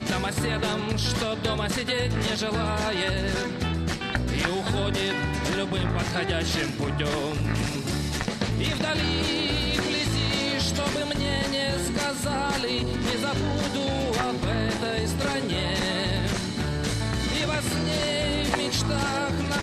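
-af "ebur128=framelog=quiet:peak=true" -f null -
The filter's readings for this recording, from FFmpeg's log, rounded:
Integrated loudness:
  I:         -26.0 LUFS
  Threshold: -36.0 LUFS
Loudness range:
  LRA:         1.4 LU
  Threshold: -46.1 LUFS
  LRA low:   -26.5 LUFS
  LRA high:  -25.1 LUFS
True peak:
  Peak:       -8.6 dBFS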